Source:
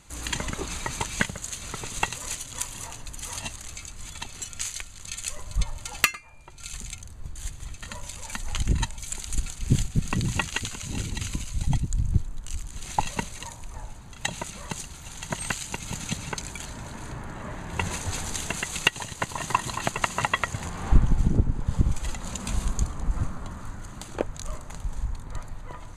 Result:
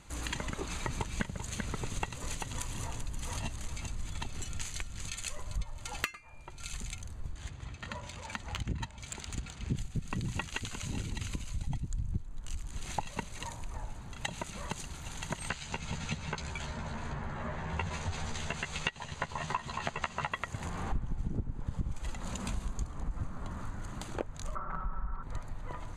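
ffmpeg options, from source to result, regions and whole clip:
-filter_complex "[0:a]asettb=1/sr,asplit=3[a][b][c];[a]atrim=end=0.854[d];[b]atrim=start=0.85:end=5.08,asetpts=PTS-STARTPTS,afade=t=in:d=0.004:c=qsin,afade=t=out:st=4.226:d=0.004:c=qsin,lowshelf=f=400:g=8,aecho=1:1:389:0.282,atrim=end_sample=186543[e];[c]atrim=start=5.076[f];[d][e]acrossfade=d=0.004:c1=hsin:c2=qsin[g];[g][f]acrossfade=d=0.004:c1=qsin:c2=hsin,asettb=1/sr,asplit=3[h][i][j];[h]atrim=end=7.354[k];[i]atrim=start=7.35:end=9.77,asetpts=PTS-STARTPTS,afade=t=in:d=0.004:c=qsin,afade=t=out:st=2.416:d=0.004:c=qsin,highpass=68,adynamicsmooth=sensitivity=3:basefreq=5k[l];[j]atrim=start=9.766[m];[k][l]acrossfade=d=0.004:c1=hsin:c2=qsin[n];[n][m]acrossfade=d=0.004:c1=qsin:c2=hsin,asettb=1/sr,asplit=3[o][p][q];[o]atrim=end=15.494[r];[p]atrim=start=15.49:end=20.32,asetpts=PTS-STARTPTS,afade=t=in:d=0.004:c=qsin,afade=t=out:st=4.826:d=0.004:c=qsin,lowpass=5.9k,equalizer=f=310:w=4.8:g=-10.5,asplit=2[s][t];[t]adelay=13,volume=-4dB[u];[s][u]amix=inputs=2:normalize=0,atrim=end_sample=213003[v];[q]atrim=start=20.316[w];[r][v]acrossfade=d=0.004:c1=hsin:c2=qsin[x];[x][w]acrossfade=d=0.004:c1=qsin:c2=hsin,asettb=1/sr,asplit=3[y][z][aa];[y]atrim=end=24.554[ab];[z]atrim=start=24.55:end=25.23,asetpts=PTS-STARTPTS,afade=t=in:d=0.004:c=qsin,afade=t=out:st=0.676:d=0.004:c=qsin,lowpass=f=1.3k:t=q:w=9.6,aecho=1:1:5.3:0.98,atrim=end_sample=29988[ac];[aa]atrim=start=25.226[ad];[ab][ac]acrossfade=d=0.004:c1=hsin:c2=qsin[ae];[ae][ad]acrossfade=d=0.004:c1=qsin:c2=hsin,highshelf=f=4.7k:g=-7.5,acompressor=threshold=-34dB:ratio=3"

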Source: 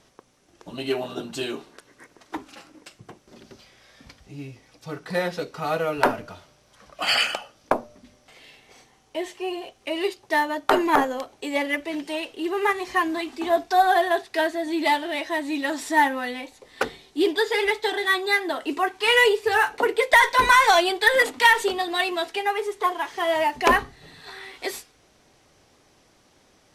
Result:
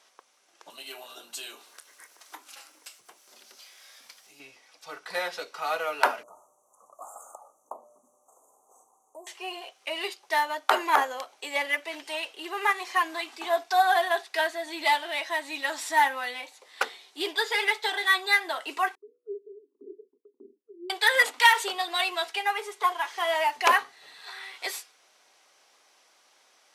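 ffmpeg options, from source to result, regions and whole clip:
-filter_complex "[0:a]asettb=1/sr,asplit=3[a][b][c];[a]atrim=end=0.704[d];[b]atrim=start=0.7:end=4.4,asetpts=PTS-STARTPTS,afade=t=in:d=0.004:c=qsin,afade=t=out:st=3.696:d=0.004:c=qsin,acompressor=threshold=-51dB:ratio=1.5:attack=3.2:release=140:knee=1:detection=peak,aemphasis=mode=production:type=50fm,asplit=2[e][f];[f]adelay=26,volume=-12.5dB[g];[e][g]amix=inputs=2:normalize=0,atrim=end_sample=163170[h];[c]atrim=start=4.396[i];[d][h]acrossfade=d=0.004:c1=hsin:c2=qsin[j];[j][i]acrossfade=d=0.004:c1=qsin:c2=hsin,asettb=1/sr,asplit=3[k][l][m];[k]atrim=end=6.234[n];[l]atrim=start=6.23:end=9.27,asetpts=PTS-STARTPTS,afade=t=in:d=0.004:c=qsin,afade=t=out:st=3.036:d=0.004:c=qsin,equalizer=f=2.1k:t=o:w=0.73:g=-7.5,acompressor=threshold=-41dB:ratio=2:attack=3.2:release=140:knee=1:detection=peak,asuperstop=centerf=2900:order=20:qfactor=0.55[o];[m]atrim=start=9.266[p];[n][o]acrossfade=d=0.004:c1=hsin:c2=qsin[q];[q][p]acrossfade=d=0.004:c1=qsin:c2=hsin,asettb=1/sr,asplit=3[r][s][t];[r]atrim=end=18.954[u];[s]atrim=start=18.95:end=20.9,asetpts=PTS-STARTPTS,afade=t=in:d=0.004:c=qsin,afade=t=out:st=1.946:d=0.004:c=qsin,asuperpass=centerf=290:order=20:qfactor=1.4,agate=range=-33dB:threshold=-49dB:ratio=3:release=100:detection=peak[v];[t]atrim=start=20.896[w];[u][v]acrossfade=d=0.004:c1=hsin:c2=qsin[x];[x][w]acrossfade=d=0.004:c1=qsin:c2=hsin,highpass=790,bandreject=f=1.8k:w=26"

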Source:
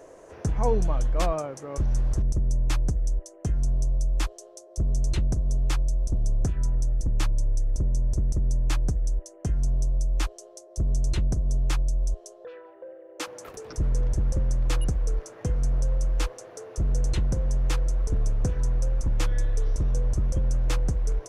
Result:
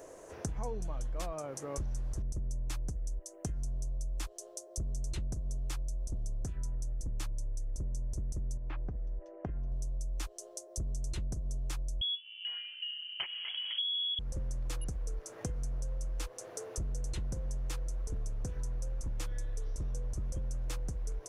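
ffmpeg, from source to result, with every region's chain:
-filter_complex "[0:a]asettb=1/sr,asplit=3[a][b][c];[a]atrim=end=8.574[d];[b]atrim=start=8.57:end=9.72,asetpts=PTS-STARTPTS,afade=t=in:d=0.004:c=qsin,afade=t=out:st=1.146:d=0.004:c=qsin,lowpass=f=2.6k:w=0.5412,lowpass=f=2.6k:w=1.3066,acompressor=threshold=-28dB:ratio=4:attack=3.2:release=140:knee=1:detection=peak,equalizer=f=660:w=0.4:g=3.5[e];[c]atrim=start=9.716[f];[d][e]acrossfade=d=0.004:c1=hsin:c2=qsin[g];[g][f]acrossfade=d=0.004:c1=qsin:c2=hsin,asettb=1/sr,asplit=3[h][i][j];[h]atrim=end=12.014[k];[i]atrim=start=12.01:end=14.19,asetpts=PTS-STARTPTS,afade=t=in:d=0.004:c=qsin,afade=t=out:st=2.176:d=0.004:c=qsin,lowshelf=f=420:g=11,acompressor=threshold=-20dB:ratio=3:attack=3.2:release=140:knee=1:detection=peak,lowpass=f=2.9k:t=q:w=0.5098,lowpass=f=2.9k:t=q:w=0.6013,lowpass=f=2.9k:t=q:w=0.9,lowpass=f=2.9k:t=q:w=2.563,afreqshift=-3400[l];[j]atrim=start=14.186[m];[k][l]acrossfade=d=0.004:c1=hsin:c2=qsin[n];[n][m]acrossfade=d=0.004:c1=qsin:c2=hsin,highshelf=f=6.5k:g=10.5,acompressor=threshold=-31dB:ratio=6,volume=-3dB"

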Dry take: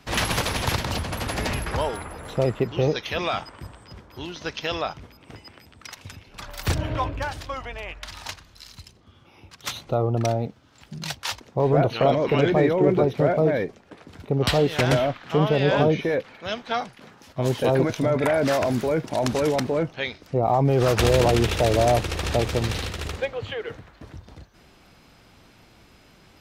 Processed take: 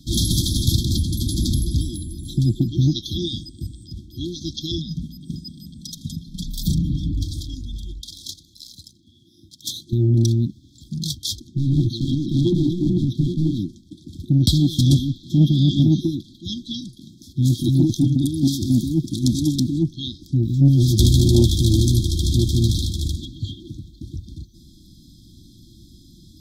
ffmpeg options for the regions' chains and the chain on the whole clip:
-filter_complex "[0:a]asettb=1/sr,asplit=3[a][b][c];[a]atrim=end=4.784[d];[b]atrim=start=4.78:end=7.12,asetpts=PTS-STARTPTS,afade=t=in:d=0.004:c=qsin,afade=t=out:st=2.336:d=0.004:c=qsin,equalizer=f=160:t=o:w=0.67:g=13,aecho=1:1:4.6:0.57,atrim=end_sample=103194,acompressor=threshold=-27dB:ratio=2.5:attack=3.2:release=140:knee=1:detection=peak[e];[c]atrim=start=7.116[f];[d][e]acrossfade=d=0.004:c1=hsin:c2=qsin[g];[g][f]acrossfade=d=0.004:c1=qsin:c2=hsin,asettb=1/sr,asplit=3[h][i][j];[h]atrim=end=8.014[k];[i]atrim=start=8.01:end=9.93,asetpts=PTS-STARTPTS,afade=t=in:d=0.004:c=qsin,afade=t=out:st=1.916:d=0.004:c=qsin,aeval=exprs='if(lt(val(0),0),0.708*val(0),val(0))':c=same,highpass=f=320:p=1[l];[j]atrim=start=9.926[m];[k][l]acrossfade=d=0.004:c1=hsin:c2=qsin[n];[n][m]acrossfade=d=0.004:c1=qsin:c2=hsin,asettb=1/sr,asplit=3[o][p][q];[o]atrim=end=11.474[r];[p]atrim=start=11.47:end=13.59,asetpts=PTS-STARTPTS,afade=t=in:d=0.004:c=qsin,afade=t=out:st=2.116:d=0.004:c=qsin,volume=19.5dB,asoftclip=hard,volume=-19.5dB,highshelf=f=9.3k:g=-10[s];[q]atrim=start=13.586[t];[r][s]acrossfade=d=0.004:c1=hsin:c2=qsin[u];[u][t]acrossfade=d=0.004:c1=qsin:c2=hsin,afftfilt=real='re*(1-between(b*sr/4096,360,3200))':imag='im*(1-between(b*sr/4096,360,3200))':win_size=4096:overlap=0.75,lowshelf=f=250:g=4,acontrast=49"

